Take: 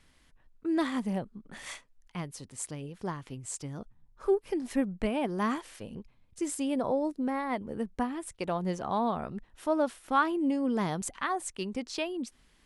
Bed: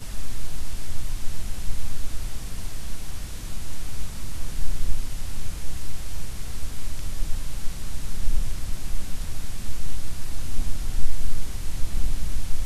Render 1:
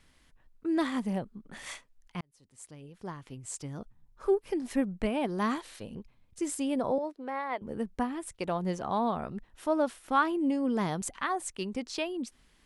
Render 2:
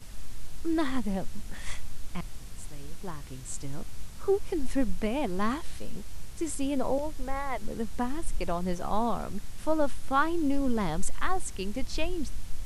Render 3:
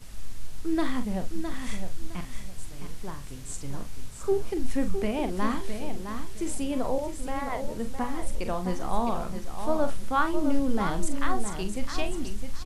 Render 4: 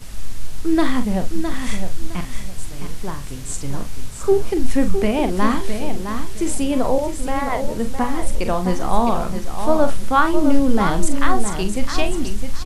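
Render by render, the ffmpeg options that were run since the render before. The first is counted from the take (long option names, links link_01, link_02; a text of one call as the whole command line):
ffmpeg -i in.wav -filter_complex "[0:a]asettb=1/sr,asplit=3[link_01][link_02][link_03];[link_01]atrim=end=5.204[link_04];[link_02]atrim=start=5.2:end=5.85,asetpts=PTS-STARTPTS,afade=type=in:duration=0.004:curve=qsin,afade=type=out:start_time=0.646:duration=0.004:curve=qsin,equalizer=frequency=4000:width=5.6:gain=8[link_05];[link_03]atrim=start=5.846[link_06];[link_04][link_05]acrossfade=duration=0.004:curve1=hsin:curve2=qsin[link_07];[link_07][link_06]acrossfade=duration=0.004:curve1=qsin:curve2=hsin,asettb=1/sr,asplit=3[link_08][link_09][link_10];[link_08]atrim=end=6.984[link_11];[link_09]atrim=start=6.98:end=7.62,asetpts=PTS-STARTPTS,afade=type=in:duration=0.004:curve=qsin,afade=type=out:start_time=0.636:duration=0.004:curve=qsin,acrossover=split=370 4600:gain=0.0794 1 0.224[link_12][link_13][link_14];[link_12][link_13][link_14]amix=inputs=3:normalize=0[link_15];[link_10]atrim=start=7.616[link_16];[link_11][link_15]acrossfade=duration=0.004:curve1=hsin:curve2=qsin[link_17];[link_17][link_16]acrossfade=duration=0.004:curve1=qsin:curve2=hsin,asplit=2[link_18][link_19];[link_18]atrim=end=2.21,asetpts=PTS-STARTPTS,afade=type=out:start_time=2.206:duration=0.004:curve=hsin[link_20];[link_19]atrim=start=2.21,asetpts=PTS-STARTPTS,afade=type=in:duration=1.54[link_21];[link_20][link_21]concat=n=2:v=0:a=1" out.wav
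ffmpeg -i in.wav -i bed.wav -filter_complex "[1:a]volume=-10dB[link_01];[0:a][link_01]amix=inputs=2:normalize=0" out.wav
ffmpeg -i in.wav -filter_complex "[0:a]asplit=2[link_01][link_02];[link_02]adelay=43,volume=-9dB[link_03];[link_01][link_03]amix=inputs=2:normalize=0,aecho=1:1:661|1322|1983:0.398|0.0955|0.0229" out.wav
ffmpeg -i in.wav -af "volume=9.5dB,alimiter=limit=-2dB:level=0:latency=1" out.wav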